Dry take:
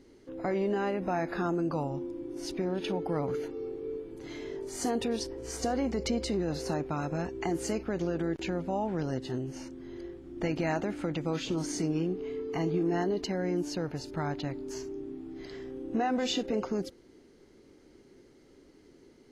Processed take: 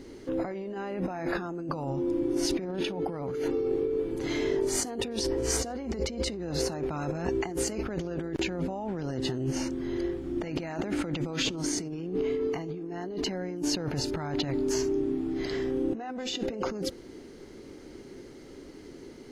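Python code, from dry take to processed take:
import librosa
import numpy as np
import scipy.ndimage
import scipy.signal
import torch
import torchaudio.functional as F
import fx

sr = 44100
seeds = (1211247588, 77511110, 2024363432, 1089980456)

y = fx.over_compress(x, sr, threshold_db=-38.0, ratio=-1.0)
y = y * librosa.db_to_amplitude(6.5)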